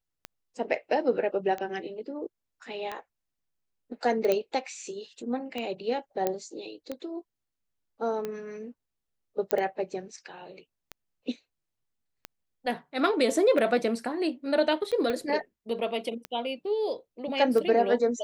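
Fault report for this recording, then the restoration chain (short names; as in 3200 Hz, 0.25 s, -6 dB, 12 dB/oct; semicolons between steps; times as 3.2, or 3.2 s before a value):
tick 45 rpm -20 dBFS
4.32 pop -12 dBFS
6.27 pop -13 dBFS
9.51 pop -10 dBFS
15.1 pop -18 dBFS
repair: de-click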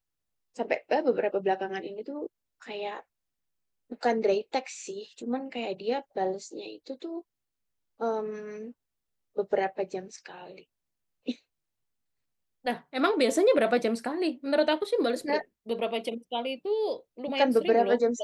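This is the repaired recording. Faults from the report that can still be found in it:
15.1 pop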